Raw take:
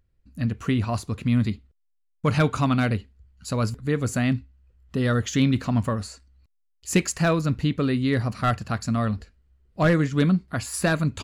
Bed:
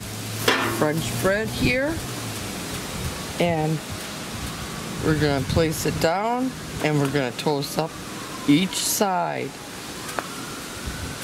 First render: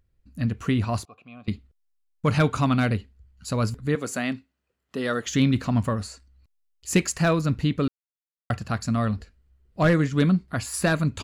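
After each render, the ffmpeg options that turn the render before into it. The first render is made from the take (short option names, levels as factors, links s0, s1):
-filter_complex "[0:a]asettb=1/sr,asplit=3[s0][s1][s2];[s0]atrim=end=1.054[s3];[s1]atrim=start=1.05:end=1.48,asetpts=PTS-STARTPTS,afade=t=in:d=0.004:c=qsin,afade=t=out:st=0.426:d=0.004:c=qsin,asplit=3[s4][s5][s6];[s4]bandpass=f=730:t=q:w=8,volume=1[s7];[s5]bandpass=f=1090:t=q:w=8,volume=0.501[s8];[s6]bandpass=f=2440:t=q:w=8,volume=0.355[s9];[s7][s8][s9]amix=inputs=3:normalize=0[s10];[s2]atrim=start=1.476[s11];[s3][s10]acrossfade=d=0.004:c1=hsin:c2=qsin[s12];[s12][s11]acrossfade=d=0.004:c1=qsin:c2=hsin,asettb=1/sr,asplit=3[s13][s14][s15];[s13]atrim=end=3.954[s16];[s14]atrim=start=3.95:end=5.27,asetpts=PTS-STARTPTS,afade=t=in:d=0.004:c=qsin,afade=t=out:st=1.316:d=0.004:c=qsin,highpass=300[s17];[s15]atrim=start=5.266[s18];[s16][s17]acrossfade=d=0.004:c1=hsin:c2=qsin[s19];[s19][s18]acrossfade=d=0.004:c1=qsin:c2=hsin,asplit=3[s20][s21][s22];[s20]atrim=end=7.88,asetpts=PTS-STARTPTS,afade=t=out:st=7.876:d=0.004:c=hsin[s23];[s21]atrim=start=7.88:end=8.5,asetpts=PTS-STARTPTS,volume=0[s24];[s22]atrim=start=8.5,asetpts=PTS-STARTPTS,afade=t=in:d=0.004:c=hsin[s25];[s23][s24][s25]concat=n=3:v=0:a=1"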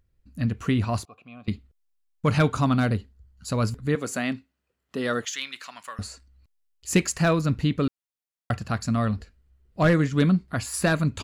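-filter_complex "[0:a]asettb=1/sr,asplit=3[s0][s1][s2];[s0]atrim=end=2.524[s3];[s1]atrim=start=2.52:end=3.49,asetpts=PTS-STARTPTS,afade=t=in:d=0.004:c=qsin,afade=t=out:st=0.966:d=0.004:c=qsin,equalizer=f=2400:t=o:w=0.68:g=-6[s4];[s2]atrim=start=3.486[s5];[s3][s4]acrossfade=d=0.004:c1=hsin:c2=qsin[s6];[s6][s5]acrossfade=d=0.004:c1=qsin:c2=hsin,asettb=1/sr,asplit=3[s7][s8][s9];[s7]atrim=end=5.254[s10];[s8]atrim=start=5.25:end=5.99,asetpts=PTS-STARTPTS,afade=t=in:d=0.004:c=qsin,afade=t=out:st=0.736:d=0.004:c=qsin,highpass=1500[s11];[s9]atrim=start=5.986[s12];[s10][s11]acrossfade=d=0.004:c1=hsin:c2=qsin[s13];[s13][s12]acrossfade=d=0.004:c1=qsin:c2=hsin"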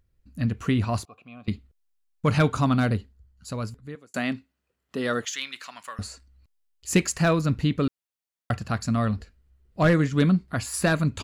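-filter_complex "[0:a]asplit=2[s0][s1];[s0]atrim=end=4.14,asetpts=PTS-STARTPTS,afade=t=out:st=2.97:d=1.17[s2];[s1]atrim=start=4.14,asetpts=PTS-STARTPTS,afade=t=in:d=0.004:c=hsin[s3];[s2][s3]concat=n=2:v=0:a=1"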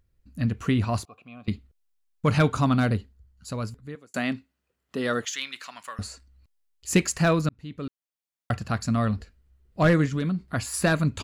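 -filter_complex "[0:a]asettb=1/sr,asplit=3[s0][s1][s2];[s0]atrim=end=10.054[s3];[s1]atrim=start=10.05:end=10.46,asetpts=PTS-STARTPTS,afade=t=in:d=0.004:c=qsin,afade=t=out:st=0.406:d=0.004:c=qsin,acompressor=threshold=0.0708:ratio=6:attack=3.2:release=140:knee=1:detection=peak[s4];[s2]atrim=start=10.456[s5];[s3][s4]acrossfade=d=0.004:c1=hsin:c2=qsin[s6];[s6][s5]acrossfade=d=0.004:c1=qsin:c2=hsin,asplit=2[s7][s8];[s7]atrim=end=7.49,asetpts=PTS-STARTPTS,afade=t=out:st=7.486:d=0.004:c=hsin[s9];[s8]atrim=start=7.49,asetpts=PTS-STARTPTS,afade=t=in:d=1.07[s10];[s9][s10]concat=n=2:v=0:a=1"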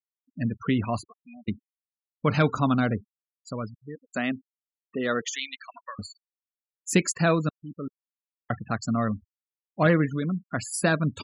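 -af "highpass=140,afftfilt=real='re*gte(hypot(re,im),0.0224)':imag='im*gte(hypot(re,im),0.0224)':win_size=1024:overlap=0.75"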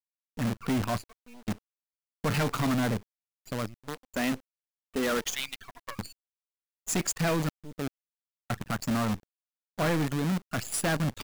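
-af "volume=15.8,asoftclip=hard,volume=0.0631,acrusher=bits=6:dc=4:mix=0:aa=0.000001"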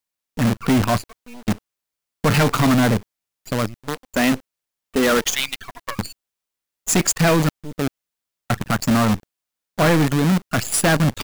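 -af "volume=3.55"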